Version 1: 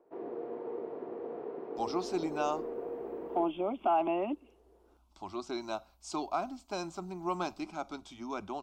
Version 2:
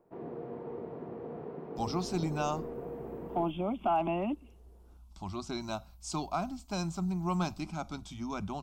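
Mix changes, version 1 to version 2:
speech: add high-shelf EQ 6,100 Hz +8.5 dB
master: add low shelf with overshoot 230 Hz +13 dB, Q 1.5

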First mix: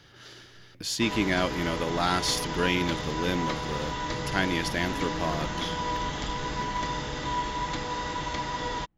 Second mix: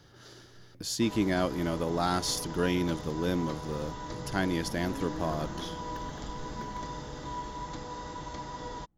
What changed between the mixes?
second sound −6.0 dB
master: add parametric band 2,500 Hz −10.5 dB 1.4 octaves

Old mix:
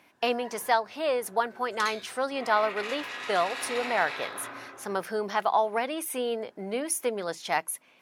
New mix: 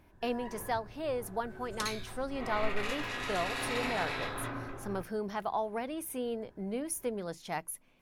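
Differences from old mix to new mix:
speech −10.0 dB
master: remove meter weighting curve A

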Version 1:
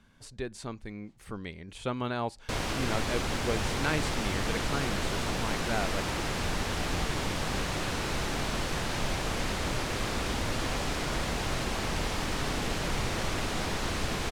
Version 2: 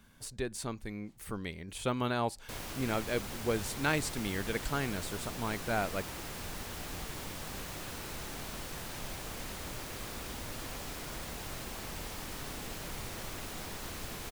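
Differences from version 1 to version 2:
background −11.5 dB
master: remove high-frequency loss of the air 60 metres

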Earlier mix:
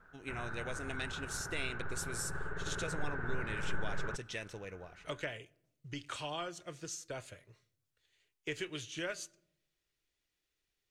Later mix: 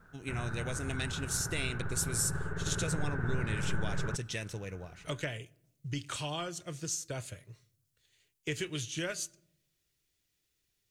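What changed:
speech: add high-shelf EQ 4,700 Hz +12 dB
master: add parametric band 120 Hz +10.5 dB 2.3 octaves

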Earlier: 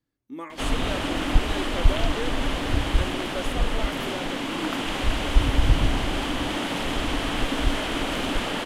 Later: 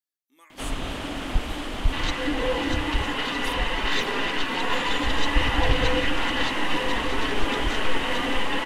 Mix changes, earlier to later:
speech: add first difference
first sound −4.5 dB
second sound: unmuted

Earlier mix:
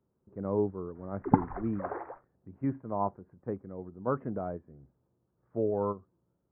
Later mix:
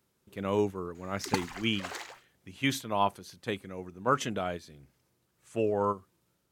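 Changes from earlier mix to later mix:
background −10.0 dB
master: remove Gaussian smoothing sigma 8.2 samples

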